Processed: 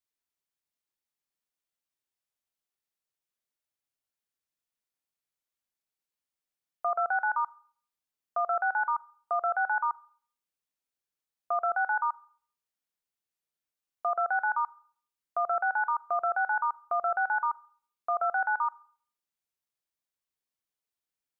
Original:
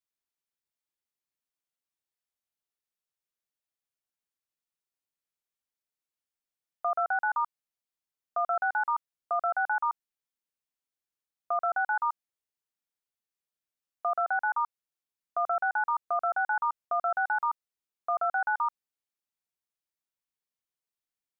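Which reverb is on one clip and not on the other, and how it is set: Schroeder reverb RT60 0.5 s, combs from 30 ms, DRR 19.5 dB

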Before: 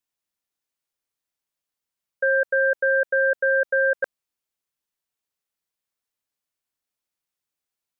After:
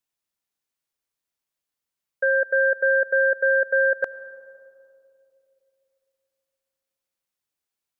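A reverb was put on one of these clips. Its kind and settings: digital reverb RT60 2.9 s, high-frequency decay 0.25×, pre-delay 55 ms, DRR 19 dB

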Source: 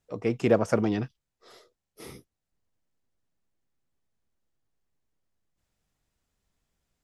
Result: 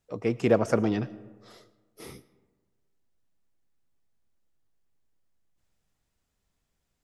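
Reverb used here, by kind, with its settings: digital reverb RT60 1.4 s, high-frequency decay 0.45×, pre-delay 65 ms, DRR 18.5 dB

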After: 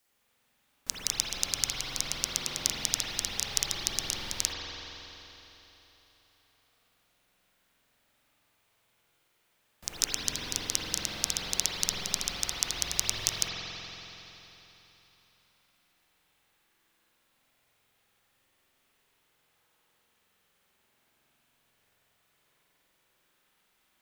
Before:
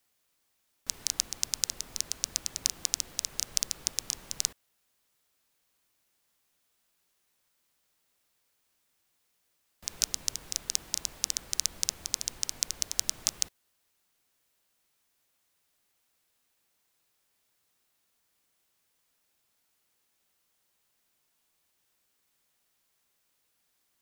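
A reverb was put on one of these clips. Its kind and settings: spring tank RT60 3.6 s, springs 46 ms, chirp 40 ms, DRR -8 dB

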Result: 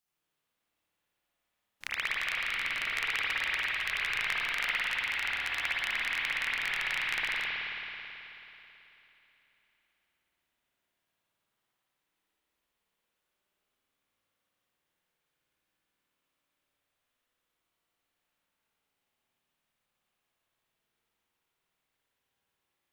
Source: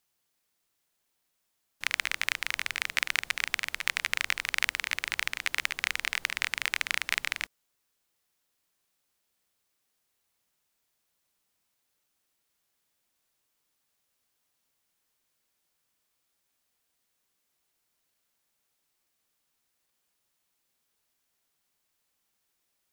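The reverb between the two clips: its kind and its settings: spring tank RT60 3.3 s, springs 54 ms, chirp 70 ms, DRR -9.5 dB; gain -9.5 dB

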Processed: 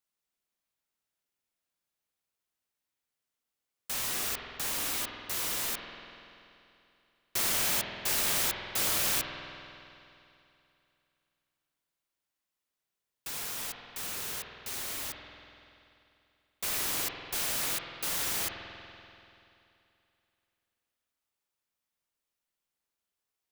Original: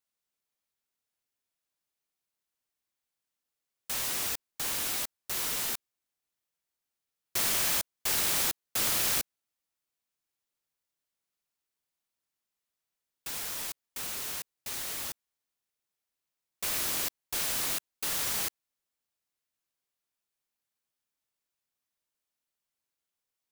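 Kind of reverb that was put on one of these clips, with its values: spring tank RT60 2.8 s, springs 48 ms, chirp 55 ms, DRR 2.5 dB; gain -1 dB

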